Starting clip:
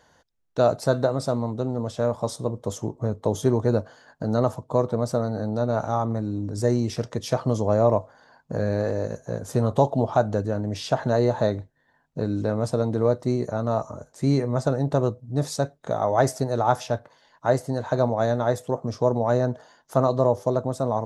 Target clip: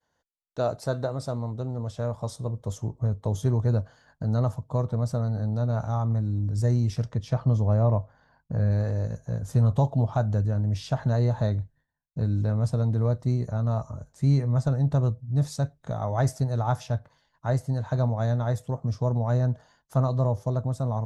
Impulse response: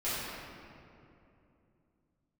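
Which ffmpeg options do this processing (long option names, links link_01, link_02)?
-filter_complex "[0:a]asettb=1/sr,asplit=3[link_01][link_02][link_03];[link_01]atrim=end=7.114[link_04];[link_02]atrim=start=7.11:end=8.71,asetpts=PTS-STARTPTS,afade=type=in:duration=0.004:curve=qsin,afade=type=out:start_time=1.596:duration=0.004:curve=qsin,aemphasis=mode=reproduction:type=50fm[link_05];[link_03]atrim=start=8.706[link_06];[link_04][link_05]acrossfade=duration=0.004:curve1=hsin:curve2=qsin[link_07];[link_07][link_06]acrossfade=duration=0.004:curve1=qsin:curve2=hsin,agate=range=-33dB:threshold=-52dB:ratio=3:detection=peak,asubboost=boost=7:cutoff=130,volume=-6.5dB"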